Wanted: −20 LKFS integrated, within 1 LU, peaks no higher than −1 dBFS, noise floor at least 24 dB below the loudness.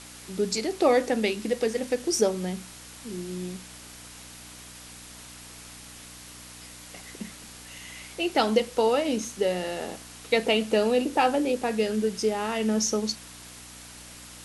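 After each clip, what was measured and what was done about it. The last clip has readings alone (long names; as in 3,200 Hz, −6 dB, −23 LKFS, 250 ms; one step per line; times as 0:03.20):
mains hum 60 Hz; hum harmonics up to 300 Hz; level of the hum −49 dBFS; background noise floor −46 dBFS; target noise floor −51 dBFS; integrated loudness −26.5 LKFS; sample peak −9.0 dBFS; target loudness −20.0 LKFS
→ hum removal 60 Hz, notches 5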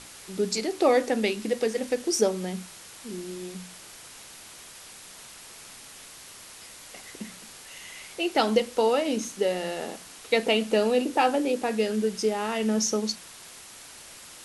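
mains hum none found; background noise floor −47 dBFS; target noise floor −51 dBFS
→ noise reduction from a noise print 6 dB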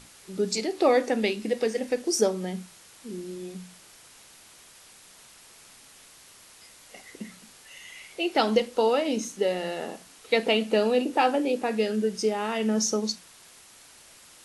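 background noise floor −52 dBFS; integrated loudness −26.0 LKFS; sample peak −8.5 dBFS; target loudness −20.0 LKFS
→ level +6 dB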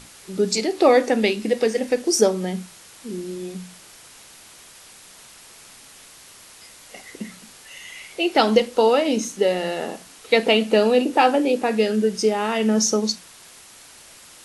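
integrated loudness −20.0 LKFS; sample peak −2.5 dBFS; background noise floor −46 dBFS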